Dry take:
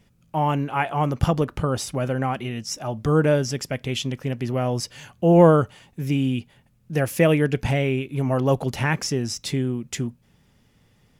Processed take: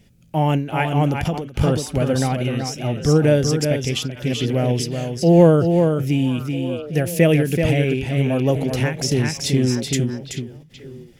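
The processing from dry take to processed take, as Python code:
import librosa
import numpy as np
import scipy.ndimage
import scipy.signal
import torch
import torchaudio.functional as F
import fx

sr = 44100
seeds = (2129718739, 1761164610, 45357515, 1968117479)

p1 = fx.peak_eq(x, sr, hz=1100.0, db=-11.5, octaves=0.87)
p2 = p1 + 10.0 ** (-5.5 / 20.0) * np.pad(p1, (int(381 * sr / 1000.0), 0))[:len(p1)]
p3 = fx.rider(p2, sr, range_db=4, speed_s=2.0)
p4 = p3 + fx.echo_stepped(p3, sr, ms=432, hz=3200.0, octaves=-1.4, feedback_pct=70, wet_db=-8.5, dry=0)
p5 = fx.end_taper(p4, sr, db_per_s=120.0)
y = p5 * 10.0 ** (3.5 / 20.0)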